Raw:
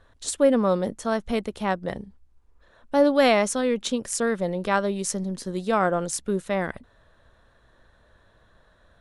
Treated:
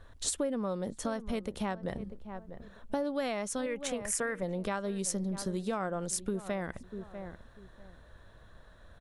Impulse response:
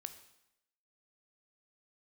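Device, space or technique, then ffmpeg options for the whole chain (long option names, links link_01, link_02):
ASMR close-microphone chain: -filter_complex "[0:a]asettb=1/sr,asplit=3[link_01][link_02][link_03];[link_01]atrim=end=3.664[link_04];[link_02]atrim=start=3.66:end=4.43,asetpts=PTS-STARTPTS,afade=type=in:duration=0.004:curve=qsin,afade=type=out:start_time=0.766:duration=0.004:curve=qsin,equalizer=frequency=250:width_type=o:width=1:gain=-9,equalizer=frequency=2000:width_type=o:width=1:gain=9,equalizer=frequency=4000:width_type=o:width=1:gain=-11[link_05];[link_03]atrim=start=4.426[link_06];[link_04][link_05]acrossfade=duration=0.004:curve1=hsin:curve2=qsin[link_07];[link_07][link_06]acrossfade=duration=0.004:curve1=qsin:curve2=hsin,lowshelf=frequency=160:gain=6,asplit=2[link_08][link_09];[link_09]adelay=643,lowpass=frequency=1200:poles=1,volume=-18dB,asplit=2[link_10][link_11];[link_11]adelay=643,lowpass=frequency=1200:poles=1,volume=0.22[link_12];[link_08][link_10][link_12]amix=inputs=3:normalize=0,acompressor=threshold=-31dB:ratio=6,highshelf=frequency=10000:gain=5.5"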